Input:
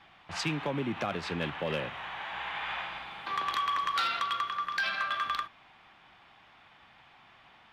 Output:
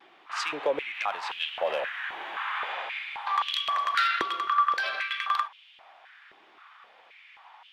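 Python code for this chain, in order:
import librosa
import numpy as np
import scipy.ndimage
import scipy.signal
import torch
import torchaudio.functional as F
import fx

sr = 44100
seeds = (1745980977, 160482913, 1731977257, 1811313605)

y = fx.dmg_noise_colour(x, sr, seeds[0], colour='pink', level_db=-71.0, at=(0.93, 2.71), fade=0.02)
y = fx.vibrato(y, sr, rate_hz=0.36, depth_cents=14.0)
y = fx.filter_held_highpass(y, sr, hz=3.8, low_hz=360.0, high_hz=3000.0)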